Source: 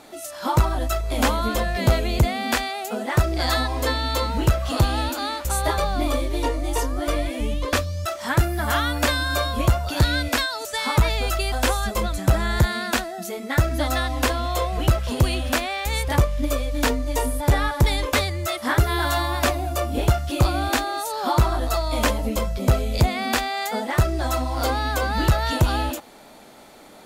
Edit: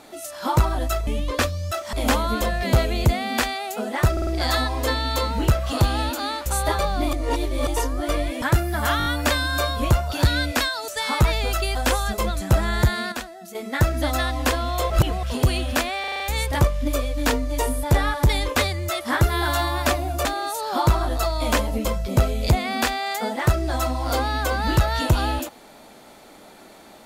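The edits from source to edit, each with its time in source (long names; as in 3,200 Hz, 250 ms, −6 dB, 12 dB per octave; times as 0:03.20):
0:03.26: stutter 0.05 s, 4 plays
0:06.12–0:06.66: reverse
0:07.41–0:08.27: move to 0:01.07
0:08.83: stutter 0.02 s, 5 plays
0:12.89–0:13.32: clip gain −8.5 dB
0:14.67–0:15.00: reverse
0:15.77: stutter 0.04 s, 6 plays
0:19.82–0:20.76: remove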